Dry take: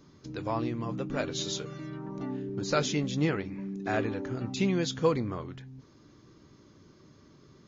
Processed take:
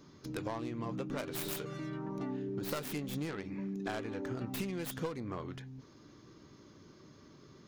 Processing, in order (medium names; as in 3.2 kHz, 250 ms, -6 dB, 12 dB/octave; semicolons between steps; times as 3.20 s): tracing distortion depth 0.4 ms; bass shelf 140 Hz -5 dB; compression 16:1, threshold -35 dBFS, peak gain reduction 16 dB; trim +1 dB